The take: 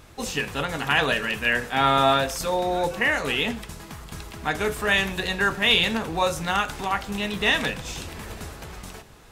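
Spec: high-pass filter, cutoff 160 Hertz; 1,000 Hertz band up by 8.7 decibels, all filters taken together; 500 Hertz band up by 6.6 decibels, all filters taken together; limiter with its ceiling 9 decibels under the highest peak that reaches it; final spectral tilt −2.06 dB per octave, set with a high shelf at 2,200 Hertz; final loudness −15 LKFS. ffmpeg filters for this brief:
ffmpeg -i in.wav -af "highpass=160,equalizer=frequency=500:width_type=o:gain=5,equalizer=frequency=1000:width_type=o:gain=8.5,highshelf=frequency=2200:gain=7,volume=5dB,alimiter=limit=-3dB:level=0:latency=1" out.wav

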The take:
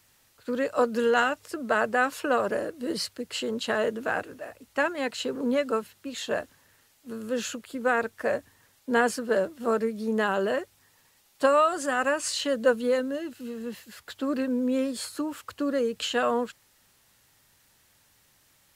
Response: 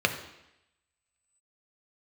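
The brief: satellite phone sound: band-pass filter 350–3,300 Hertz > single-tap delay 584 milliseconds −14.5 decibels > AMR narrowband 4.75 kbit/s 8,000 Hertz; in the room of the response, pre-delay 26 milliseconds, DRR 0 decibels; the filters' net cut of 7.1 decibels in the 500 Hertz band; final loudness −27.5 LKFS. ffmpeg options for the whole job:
-filter_complex "[0:a]equalizer=frequency=500:width_type=o:gain=-7,asplit=2[link_01][link_02];[1:a]atrim=start_sample=2205,adelay=26[link_03];[link_02][link_03]afir=irnorm=-1:irlink=0,volume=-13dB[link_04];[link_01][link_04]amix=inputs=2:normalize=0,highpass=350,lowpass=3300,aecho=1:1:584:0.188,volume=3.5dB" -ar 8000 -c:a libopencore_amrnb -b:a 4750

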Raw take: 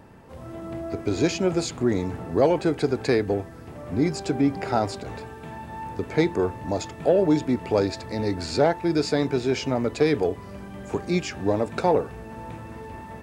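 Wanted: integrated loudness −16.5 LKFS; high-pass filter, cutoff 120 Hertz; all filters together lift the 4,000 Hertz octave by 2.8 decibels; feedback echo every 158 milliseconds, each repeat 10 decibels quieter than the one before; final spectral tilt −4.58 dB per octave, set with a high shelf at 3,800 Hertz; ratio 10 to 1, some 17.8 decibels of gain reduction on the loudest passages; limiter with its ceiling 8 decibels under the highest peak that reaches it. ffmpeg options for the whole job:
ffmpeg -i in.wav -af "highpass=120,highshelf=frequency=3800:gain=-7,equalizer=frequency=4000:width_type=o:gain=8,acompressor=threshold=-34dB:ratio=10,alimiter=level_in=6dB:limit=-24dB:level=0:latency=1,volume=-6dB,aecho=1:1:158|316|474|632:0.316|0.101|0.0324|0.0104,volume=23.5dB" out.wav

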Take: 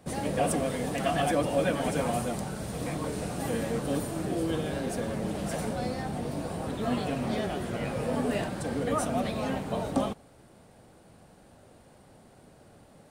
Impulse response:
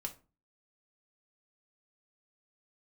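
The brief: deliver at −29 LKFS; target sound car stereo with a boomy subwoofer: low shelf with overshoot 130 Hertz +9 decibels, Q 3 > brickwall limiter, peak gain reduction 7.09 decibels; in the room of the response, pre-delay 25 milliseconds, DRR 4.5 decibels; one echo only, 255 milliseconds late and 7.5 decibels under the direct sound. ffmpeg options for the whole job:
-filter_complex "[0:a]aecho=1:1:255:0.422,asplit=2[link_01][link_02];[1:a]atrim=start_sample=2205,adelay=25[link_03];[link_02][link_03]afir=irnorm=-1:irlink=0,volume=-3dB[link_04];[link_01][link_04]amix=inputs=2:normalize=0,lowshelf=frequency=130:width_type=q:width=3:gain=9,alimiter=limit=-19dB:level=0:latency=1"

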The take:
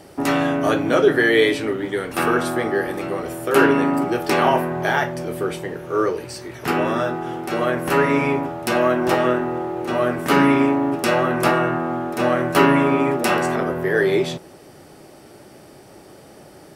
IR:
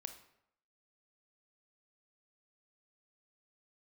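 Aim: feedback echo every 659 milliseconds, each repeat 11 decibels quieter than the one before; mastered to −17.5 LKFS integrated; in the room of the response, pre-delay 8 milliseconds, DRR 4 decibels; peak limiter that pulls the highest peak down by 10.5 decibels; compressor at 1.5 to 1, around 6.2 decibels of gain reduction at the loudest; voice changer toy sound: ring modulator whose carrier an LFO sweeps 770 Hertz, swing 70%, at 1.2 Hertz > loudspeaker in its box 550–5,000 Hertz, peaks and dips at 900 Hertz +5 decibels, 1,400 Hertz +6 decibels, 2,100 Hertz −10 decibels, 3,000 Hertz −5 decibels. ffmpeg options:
-filter_complex "[0:a]acompressor=threshold=-27dB:ratio=1.5,alimiter=limit=-15.5dB:level=0:latency=1,aecho=1:1:659|1318|1977:0.282|0.0789|0.0221,asplit=2[link_01][link_02];[1:a]atrim=start_sample=2205,adelay=8[link_03];[link_02][link_03]afir=irnorm=-1:irlink=0,volume=0dB[link_04];[link_01][link_04]amix=inputs=2:normalize=0,aeval=exprs='val(0)*sin(2*PI*770*n/s+770*0.7/1.2*sin(2*PI*1.2*n/s))':channel_layout=same,highpass=550,equalizer=frequency=900:width_type=q:width=4:gain=5,equalizer=frequency=1400:width_type=q:width=4:gain=6,equalizer=frequency=2100:width_type=q:width=4:gain=-10,equalizer=frequency=3000:width_type=q:width=4:gain=-5,lowpass=frequency=5000:width=0.5412,lowpass=frequency=5000:width=1.3066,volume=8dB"

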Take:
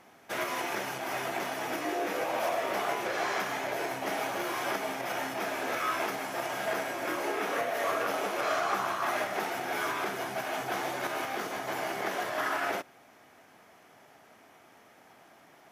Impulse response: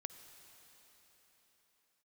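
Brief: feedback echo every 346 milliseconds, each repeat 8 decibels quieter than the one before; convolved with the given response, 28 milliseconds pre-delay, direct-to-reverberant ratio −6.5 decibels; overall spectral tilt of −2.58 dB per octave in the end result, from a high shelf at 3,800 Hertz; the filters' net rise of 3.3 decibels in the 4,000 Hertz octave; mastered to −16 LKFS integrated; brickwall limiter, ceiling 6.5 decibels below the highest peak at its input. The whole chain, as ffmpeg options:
-filter_complex "[0:a]highshelf=frequency=3800:gain=-6.5,equalizer=frequency=4000:width_type=o:gain=8.5,alimiter=limit=-23dB:level=0:latency=1,aecho=1:1:346|692|1038|1384|1730:0.398|0.159|0.0637|0.0255|0.0102,asplit=2[link_01][link_02];[1:a]atrim=start_sample=2205,adelay=28[link_03];[link_02][link_03]afir=irnorm=-1:irlink=0,volume=10dB[link_04];[link_01][link_04]amix=inputs=2:normalize=0,volume=9dB"

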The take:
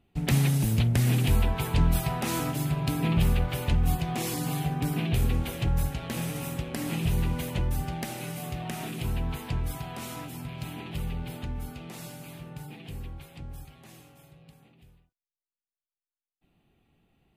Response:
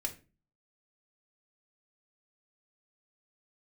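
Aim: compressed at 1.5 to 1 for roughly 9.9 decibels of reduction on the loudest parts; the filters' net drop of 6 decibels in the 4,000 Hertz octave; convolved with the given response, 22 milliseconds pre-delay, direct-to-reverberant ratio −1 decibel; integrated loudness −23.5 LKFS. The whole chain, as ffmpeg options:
-filter_complex "[0:a]equalizer=frequency=4000:width_type=o:gain=-8.5,acompressor=threshold=-47dB:ratio=1.5,asplit=2[link_01][link_02];[1:a]atrim=start_sample=2205,adelay=22[link_03];[link_02][link_03]afir=irnorm=-1:irlink=0,volume=0dB[link_04];[link_01][link_04]amix=inputs=2:normalize=0,volume=9.5dB"

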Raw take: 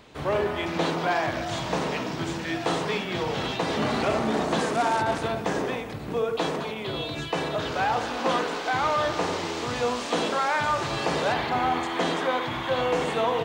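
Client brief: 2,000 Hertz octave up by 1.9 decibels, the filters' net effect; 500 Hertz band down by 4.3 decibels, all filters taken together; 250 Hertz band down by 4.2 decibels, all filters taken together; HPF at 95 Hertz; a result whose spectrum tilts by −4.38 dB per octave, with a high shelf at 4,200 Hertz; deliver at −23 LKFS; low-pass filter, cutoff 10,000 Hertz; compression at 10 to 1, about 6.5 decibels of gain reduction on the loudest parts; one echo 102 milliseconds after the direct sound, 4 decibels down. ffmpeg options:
ffmpeg -i in.wav -af "highpass=95,lowpass=10000,equalizer=frequency=250:width_type=o:gain=-4,equalizer=frequency=500:width_type=o:gain=-4.5,equalizer=frequency=2000:width_type=o:gain=4,highshelf=frequency=4200:gain=-5.5,acompressor=threshold=-28dB:ratio=10,aecho=1:1:102:0.631,volume=7.5dB" out.wav

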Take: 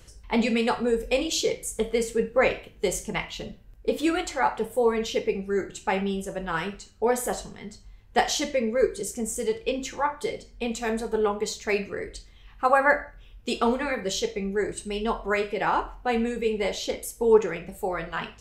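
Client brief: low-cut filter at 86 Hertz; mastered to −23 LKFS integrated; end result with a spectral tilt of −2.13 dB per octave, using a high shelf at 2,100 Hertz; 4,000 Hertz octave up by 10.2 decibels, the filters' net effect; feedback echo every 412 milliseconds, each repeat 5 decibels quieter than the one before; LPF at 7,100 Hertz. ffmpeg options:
ffmpeg -i in.wav -af "highpass=86,lowpass=7100,highshelf=frequency=2100:gain=5,equalizer=frequency=4000:width_type=o:gain=8.5,aecho=1:1:412|824|1236|1648|2060|2472|2884:0.562|0.315|0.176|0.0988|0.0553|0.031|0.0173" out.wav

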